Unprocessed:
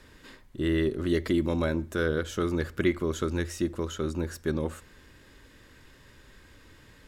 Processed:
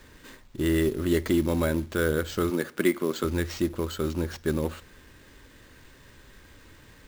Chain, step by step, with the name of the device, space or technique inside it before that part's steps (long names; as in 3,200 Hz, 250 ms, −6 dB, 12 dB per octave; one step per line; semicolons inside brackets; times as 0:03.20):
0:02.50–0:03.24: high-pass filter 170 Hz 24 dB per octave
early companding sampler (sample-rate reduction 11,000 Hz, jitter 0%; log-companded quantiser 6 bits)
level +2 dB